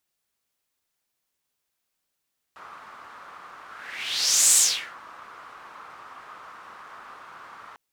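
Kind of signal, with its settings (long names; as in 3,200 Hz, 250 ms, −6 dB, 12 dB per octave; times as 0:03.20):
pass-by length 5.20 s, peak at 0:02.00, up 0.96 s, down 0.42 s, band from 1,200 Hz, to 7,900 Hz, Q 3.6, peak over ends 28 dB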